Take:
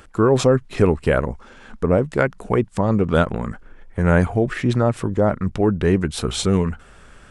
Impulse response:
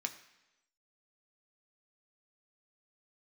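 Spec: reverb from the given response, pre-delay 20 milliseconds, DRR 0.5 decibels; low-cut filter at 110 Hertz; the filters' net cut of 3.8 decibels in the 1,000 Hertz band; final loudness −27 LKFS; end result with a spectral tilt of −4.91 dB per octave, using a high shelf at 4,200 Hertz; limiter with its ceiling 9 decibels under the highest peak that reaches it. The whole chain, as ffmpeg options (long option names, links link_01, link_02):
-filter_complex "[0:a]highpass=110,equalizer=frequency=1000:width_type=o:gain=-6,highshelf=frequency=4200:gain=7.5,alimiter=limit=-12.5dB:level=0:latency=1,asplit=2[link_01][link_02];[1:a]atrim=start_sample=2205,adelay=20[link_03];[link_02][link_03]afir=irnorm=-1:irlink=0,volume=-1dB[link_04];[link_01][link_04]amix=inputs=2:normalize=0,volume=-4.5dB"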